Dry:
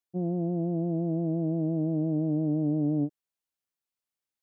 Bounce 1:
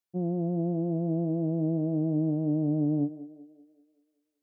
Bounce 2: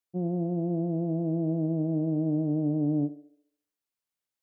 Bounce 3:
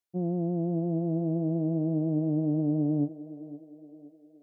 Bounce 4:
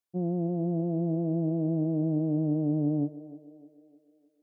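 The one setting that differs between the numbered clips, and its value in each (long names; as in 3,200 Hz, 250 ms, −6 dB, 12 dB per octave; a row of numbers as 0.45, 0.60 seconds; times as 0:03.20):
feedback echo with a band-pass in the loop, delay time: 192, 69, 517, 304 milliseconds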